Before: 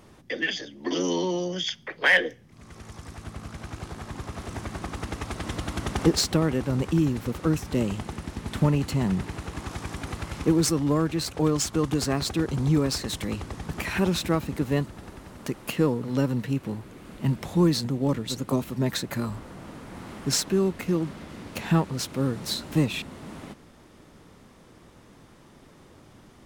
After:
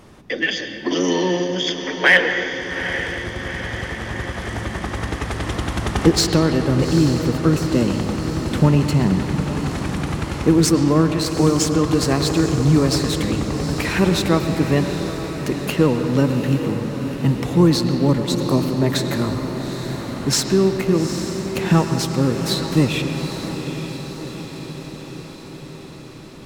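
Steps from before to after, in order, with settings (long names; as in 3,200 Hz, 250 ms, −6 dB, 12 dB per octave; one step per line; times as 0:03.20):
high-shelf EQ 8,500 Hz −3.5 dB
feedback delay with all-pass diffusion 826 ms, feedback 63%, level −9.5 dB
on a send at −7 dB: convolution reverb RT60 2.3 s, pre-delay 96 ms
on the sum: level +6.5 dB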